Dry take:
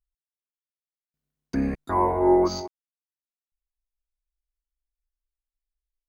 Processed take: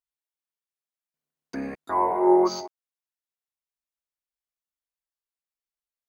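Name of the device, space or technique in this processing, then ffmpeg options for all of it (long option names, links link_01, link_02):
filter by subtraction: -filter_complex "[0:a]asplit=2[link_01][link_02];[link_02]lowpass=710,volume=-1[link_03];[link_01][link_03]amix=inputs=2:normalize=0,asettb=1/sr,asplit=3[link_04][link_05][link_06];[link_04]atrim=end=2.114[link_07];[link_05]atrim=start=2.11:end=2.61,asetpts=PTS-STARTPTS,afade=type=in:duration=0.004:curve=qsin,afade=type=out:start_time=0.496:duration=0.004:curve=qsin,aecho=1:1:5.3:0.87,atrim=end_sample=22050[link_08];[link_06]atrim=start=2.606[link_09];[link_07][link_08]acrossfade=duration=0.004:curve1=hsin:curve2=qsin[link_10];[link_10][link_09]acrossfade=duration=0.004:curve1=qsin:curve2=hsin,volume=-2dB"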